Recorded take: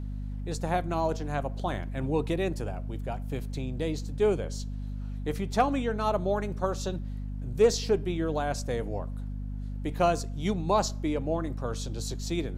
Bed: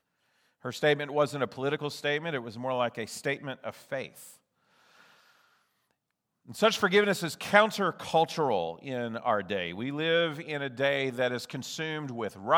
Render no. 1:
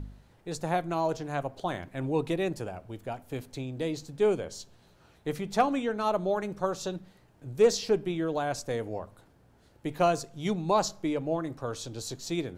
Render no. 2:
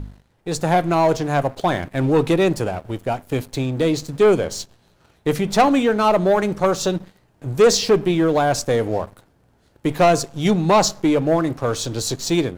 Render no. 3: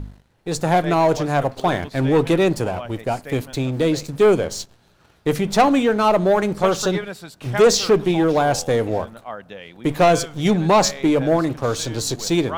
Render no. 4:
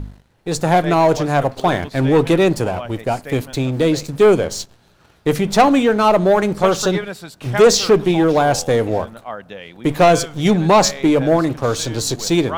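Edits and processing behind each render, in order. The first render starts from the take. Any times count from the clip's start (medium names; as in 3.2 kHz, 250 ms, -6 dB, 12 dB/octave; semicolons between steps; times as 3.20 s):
de-hum 50 Hz, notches 5
waveshaping leveller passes 2; level rider gain up to 6 dB
add bed -5.5 dB
trim +3 dB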